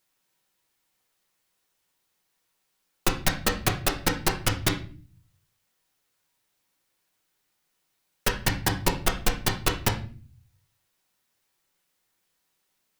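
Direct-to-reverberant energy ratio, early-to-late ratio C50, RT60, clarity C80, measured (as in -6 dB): 1.0 dB, 10.0 dB, 0.40 s, 15.0 dB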